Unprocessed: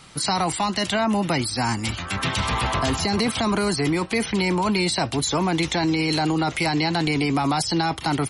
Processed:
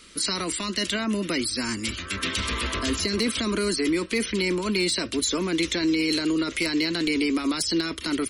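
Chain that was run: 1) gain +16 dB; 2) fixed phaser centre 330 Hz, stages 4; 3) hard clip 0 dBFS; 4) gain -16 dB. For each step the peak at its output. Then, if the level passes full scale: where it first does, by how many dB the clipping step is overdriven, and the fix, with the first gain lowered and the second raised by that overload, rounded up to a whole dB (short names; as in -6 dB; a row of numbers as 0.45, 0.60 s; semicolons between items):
+4.0, +4.5, 0.0, -16.0 dBFS; step 1, 4.5 dB; step 1 +11 dB, step 4 -11 dB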